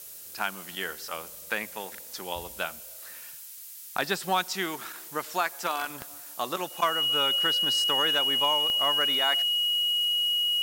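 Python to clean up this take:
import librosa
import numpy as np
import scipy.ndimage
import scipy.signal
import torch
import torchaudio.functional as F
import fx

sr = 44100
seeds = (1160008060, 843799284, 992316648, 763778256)

y = fx.fix_declip(x, sr, threshold_db=-14.5)
y = fx.fix_declick_ar(y, sr, threshold=10.0)
y = fx.notch(y, sr, hz=2900.0, q=30.0)
y = fx.noise_reduce(y, sr, print_start_s=3.46, print_end_s=3.96, reduce_db=30.0)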